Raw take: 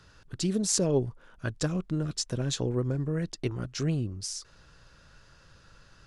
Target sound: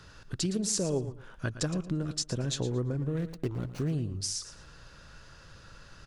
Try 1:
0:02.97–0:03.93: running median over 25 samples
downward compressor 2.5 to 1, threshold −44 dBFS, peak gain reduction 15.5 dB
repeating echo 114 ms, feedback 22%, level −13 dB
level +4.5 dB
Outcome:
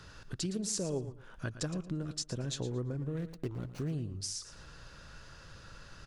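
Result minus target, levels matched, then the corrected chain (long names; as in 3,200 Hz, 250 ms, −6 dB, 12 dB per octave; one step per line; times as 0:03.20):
downward compressor: peak gain reduction +5 dB
0:02.97–0:03.93: running median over 25 samples
downward compressor 2.5 to 1, threshold −35.5 dBFS, peak gain reduction 10.5 dB
repeating echo 114 ms, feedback 22%, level −13 dB
level +4.5 dB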